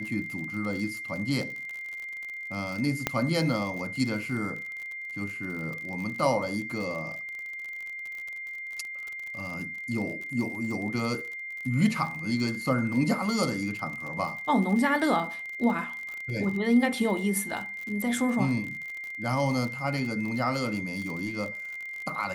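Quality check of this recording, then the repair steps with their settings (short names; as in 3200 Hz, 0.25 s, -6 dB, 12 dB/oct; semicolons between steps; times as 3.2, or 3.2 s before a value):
crackle 48/s -34 dBFS
tone 2100 Hz -35 dBFS
3.07 pop -9 dBFS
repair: de-click; notch 2100 Hz, Q 30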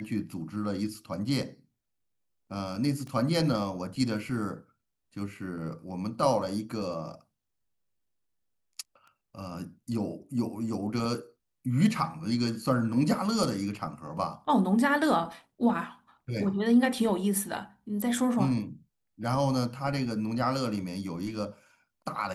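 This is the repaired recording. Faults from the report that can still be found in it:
3.07 pop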